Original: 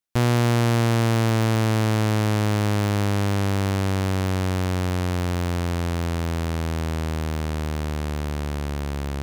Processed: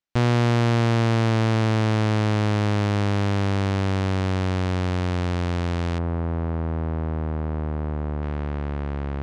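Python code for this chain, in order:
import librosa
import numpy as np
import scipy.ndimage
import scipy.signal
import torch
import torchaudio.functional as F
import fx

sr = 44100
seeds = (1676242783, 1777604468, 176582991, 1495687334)

y = fx.lowpass(x, sr, hz=fx.steps((0.0, 5200.0), (5.98, 1200.0), (8.23, 2000.0)), slope=12)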